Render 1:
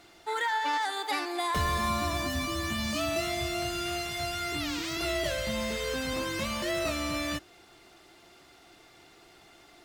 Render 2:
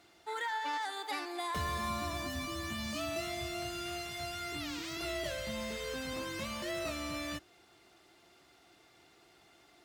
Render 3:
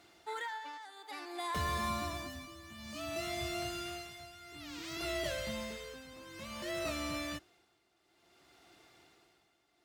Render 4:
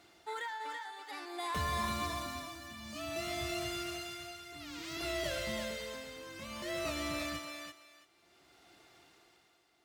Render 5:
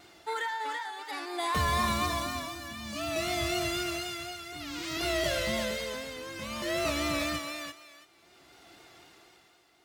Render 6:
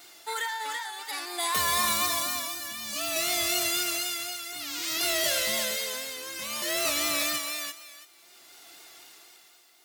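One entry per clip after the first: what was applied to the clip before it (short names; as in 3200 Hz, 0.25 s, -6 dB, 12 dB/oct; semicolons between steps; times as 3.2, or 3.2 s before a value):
HPF 50 Hz; gain -7 dB
tremolo 0.57 Hz, depth 80%; gain +1 dB
thinning echo 0.333 s, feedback 21%, high-pass 560 Hz, level -4 dB
vibrato 4 Hz 42 cents; gain +7 dB
RIAA curve recording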